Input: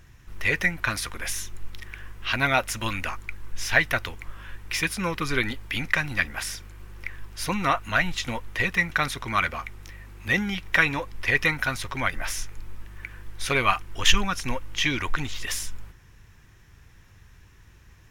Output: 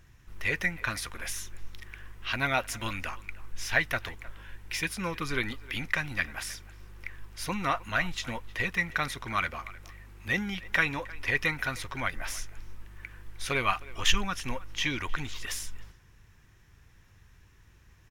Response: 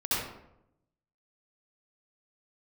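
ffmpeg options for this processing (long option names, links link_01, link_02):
-filter_complex "[0:a]asettb=1/sr,asplit=3[link_01][link_02][link_03];[link_01]atrim=end=4.294[link_04];[link_02]atrim=start=4.29:end=4.89,asetpts=PTS-STARTPTS,afade=type=in:duration=0.004:curve=qsin,afade=type=out:start_time=0.596:duration=0.004:curve=qsin,bandreject=frequency=1200:width=5.8[link_05];[link_03]atrim=start=4.886[link_06];[link_04][link_05]acrossfade=duration=0.004:curve1=hsin:curve2=qsin[link_07];[link_07][link_06]acrossfade=duration=0.004:curve1=qsin:curve2=hsin,asplit=2[link_08][link_09];[link_09]adelay=310,highpass=300,lowpass=3400,asoftclip=type=hard:threshold=-10.5dB,volume=-19dB[link_10];[link_08][link_10]amix=inputs=2:normalize=0,volume=-5.5dB"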